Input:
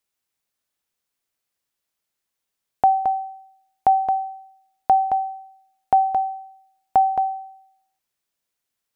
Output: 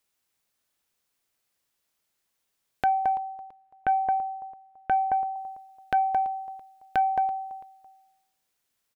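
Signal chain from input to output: compression 2:1, threshold -30 dBFS, peak gain reduction 10 dB; 3.17–5.36 s: low-pass 1.5 kHz 12 dB/octave; feedback delay 334 ms, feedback 30%, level -20.5 dB; transformer saturation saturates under 790 Hz; trim +3.5 dB

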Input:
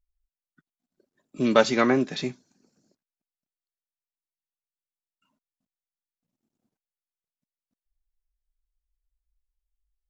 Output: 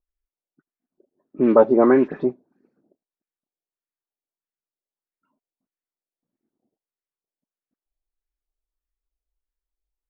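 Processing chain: peaking EQ 360 Hz +12.5 dB 1.5 oct; 1.38–2.30 s: waveshaping leveller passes 1; phase dispersion highs, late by 59 ms, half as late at 2.8 kHz; LFO low-pass sine 1.6 Hz 650–2000 Hz; trim -7 dB

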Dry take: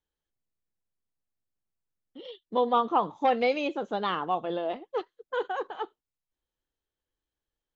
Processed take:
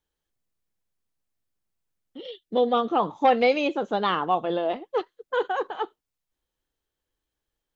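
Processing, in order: 2.22–3.00 s: peaking EQ 1 kHz -14.5 dB 0.37 oct; trim +5 dB

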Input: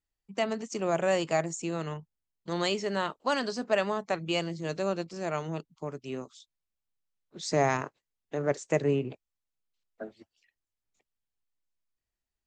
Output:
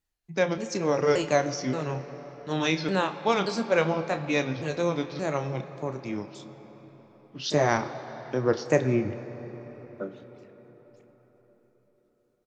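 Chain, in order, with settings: sawtooth pitch modulation -5 st, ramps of 577 ms; doubling 31 ms -11.5 dB; on a send: reverberation RT60 5.2 s, pre-delay 16 ms, DRR 11 dB; on the sum: trim +4.5 dB

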